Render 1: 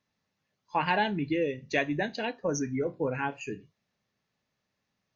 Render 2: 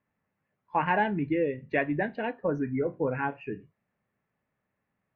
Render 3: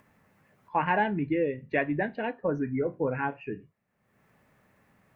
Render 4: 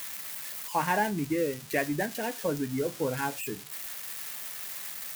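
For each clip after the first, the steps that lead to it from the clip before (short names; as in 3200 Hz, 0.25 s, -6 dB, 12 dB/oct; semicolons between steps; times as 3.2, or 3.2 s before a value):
LPF 2200 Hz 24 dB/oct; gain +1.5 dB
upward compressor, threshold -49 dBFS
switching spikes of -25 dBFS; gain -1.5 dB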